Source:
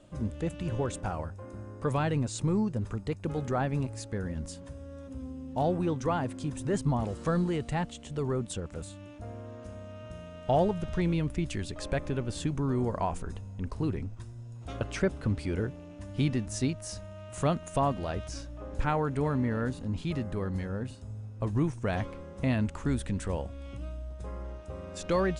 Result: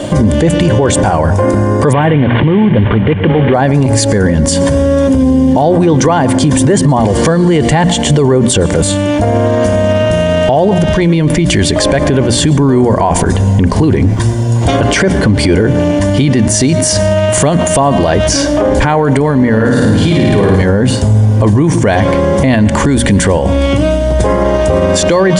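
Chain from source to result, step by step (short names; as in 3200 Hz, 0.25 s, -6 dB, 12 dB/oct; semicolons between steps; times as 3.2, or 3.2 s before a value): 1.93–3.54 CVSD 16 kbps; notches 60/120/180/240 Hz; in parallel at +2.5 dB: compressor, threshold -38 dBFS, peak gain reduction 16 dB; on the sum: notch comb 1300 Hz; 19.52–20.62 flutter echo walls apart 9.4 m, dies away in 1.3 s; on a send at -20.5 dB: reverb RT60 0.50 s, pre-delay 0.102 s; on the sum: maximiser +33 dB; gain -1 dB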